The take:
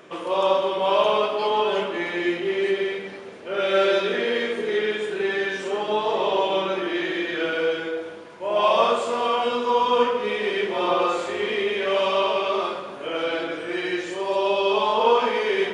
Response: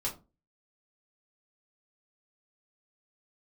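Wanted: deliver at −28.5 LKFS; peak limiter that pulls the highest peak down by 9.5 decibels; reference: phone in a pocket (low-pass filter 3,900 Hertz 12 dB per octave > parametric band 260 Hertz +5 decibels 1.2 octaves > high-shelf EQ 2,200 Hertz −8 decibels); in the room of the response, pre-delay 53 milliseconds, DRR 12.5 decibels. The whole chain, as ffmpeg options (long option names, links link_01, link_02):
-filter_complex "[0:a]alimiter=limit=-15.5dB:level=0:latency=1,asplit=2[link_01][link_02];[1:a]atrim=start_sample=2205,adelay=53[link_03];[link_02][link_03]afir=irnorm=-1:irlink=0,volume=-16dB[link_04];[link_01][link_04]amix=inputs=2:normalize=0,lowpass=3900,equalizer=frequency=260:width_type=o:width=1.2:gain=5,highshelf=frequency=2200:gain=-8,volume=-4dB"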